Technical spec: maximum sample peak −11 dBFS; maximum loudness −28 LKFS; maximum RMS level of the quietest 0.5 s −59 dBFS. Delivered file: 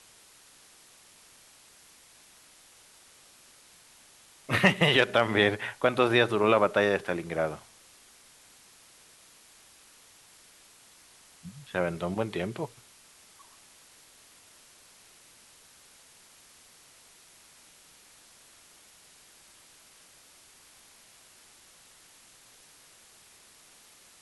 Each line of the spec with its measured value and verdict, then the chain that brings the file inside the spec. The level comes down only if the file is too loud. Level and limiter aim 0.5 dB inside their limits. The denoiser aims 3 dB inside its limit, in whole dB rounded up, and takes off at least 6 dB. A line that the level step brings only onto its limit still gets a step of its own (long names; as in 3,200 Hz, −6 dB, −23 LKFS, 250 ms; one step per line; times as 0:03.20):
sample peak −6.0 dBFS: out of spec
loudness −26.0 LKFS: out of spec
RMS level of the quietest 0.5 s −57 dBFS: out of spec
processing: level −2.5 dB
brickwall limiter −11.5 dBFS